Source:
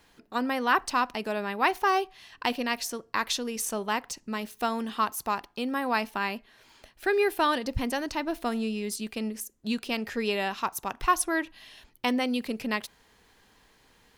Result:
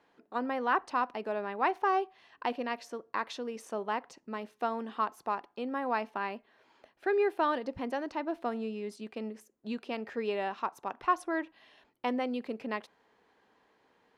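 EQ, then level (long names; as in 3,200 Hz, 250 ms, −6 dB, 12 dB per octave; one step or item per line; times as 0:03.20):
resonant band-pass 420 Hz, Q 0.52
low-shelf EQ 230 Hz −11 dB
0.0 dB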